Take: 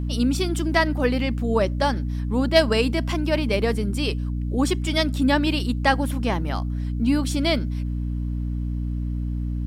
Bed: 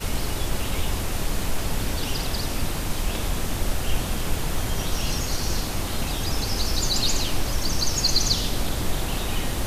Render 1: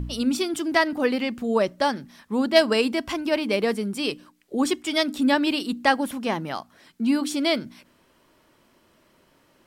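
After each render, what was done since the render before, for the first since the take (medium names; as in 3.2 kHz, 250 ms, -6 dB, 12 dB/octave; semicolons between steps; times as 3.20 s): de-hum 60 Hz, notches 5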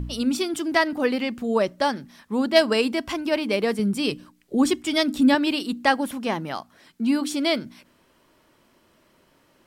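3.79–5.35 s: tone controls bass +9 dB, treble +1 dB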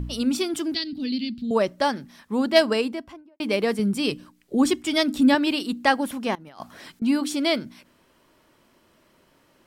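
0.74–1.51 s: FFT filter 260 Hz 0 dB, 560 Hz -24 dB, 1.1 kHz -29 dB, 1.9 kHz -16 dB, 4.3 kHz +8 dB, 6.5 kHz -16 dB; 2.56–3.40 s: studio fade out; 6.35–7.02 s: compressor with a negative ratio -39 dBFS, ratio -0.5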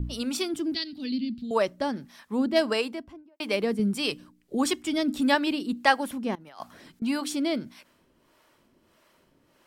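harmonic tremolo 1.6 Hz, depth 70%, crossover 460 Hz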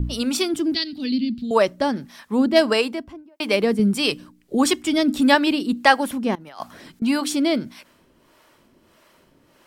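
trim +7 dB; peak limiter -1 dBFS, peak gain reduction 1.5 dB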